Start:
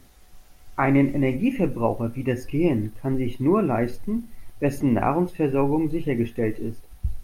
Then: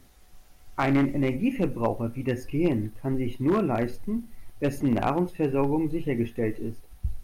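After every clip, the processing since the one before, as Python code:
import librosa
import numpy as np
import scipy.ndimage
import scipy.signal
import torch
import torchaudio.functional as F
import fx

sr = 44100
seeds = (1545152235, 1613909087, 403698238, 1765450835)

y = np.minimum(x, 2.0 * 10.0 ** (-12.5 / 20.0) - x)
y = y * 10.0 ** (-3.0 / 20.0)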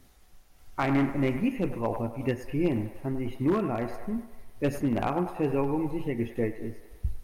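y = fx.echo_wet_bandpass(x, sr, ms=100, feedback_pct=57, hz=1100.0, wet_db=-7)
y = fx.am_noise(y, sr, seeds[0], hz=5.7, depth_pct=50)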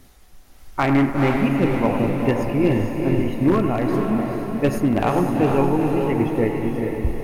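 y = fx.echo_diffused(x, sr, ms=455, feedback_pct=52, wet_db=-3.5)
y = y * 10.0 ** (7.5 / 20.0)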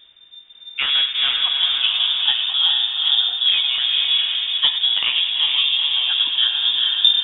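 y = fx.rider(x, sr, range_db=10, speed_s=0.5)
y = fx.freq_invert(y, sr, carrier_hz=3600)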